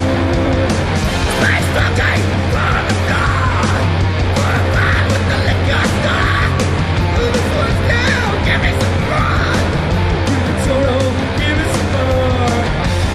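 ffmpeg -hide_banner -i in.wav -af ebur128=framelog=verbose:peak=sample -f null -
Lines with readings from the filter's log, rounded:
Integrated loudness:
  I:         -14.6 LUFS
  Threshold: -24.6 LUFS
Loudness range:
  LRA:         0.9 LU
  Threshold: -34.5 LUFS
  LRA low:   -15.1 LUFS
  LRA high:  -14.2 LUFS
Sample peak:
  Peak:       -1.7 dBFS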